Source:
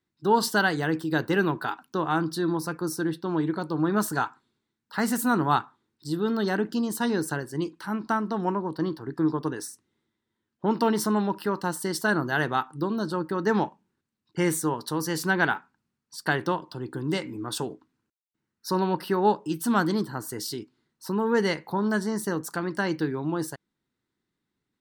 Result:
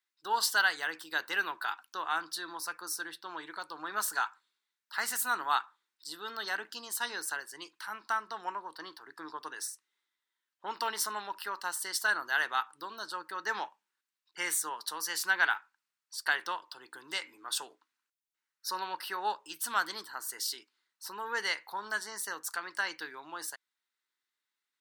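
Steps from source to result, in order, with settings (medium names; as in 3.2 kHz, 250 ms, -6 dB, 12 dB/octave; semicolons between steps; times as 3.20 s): high-pass 1.3 kHz 12 dB/octave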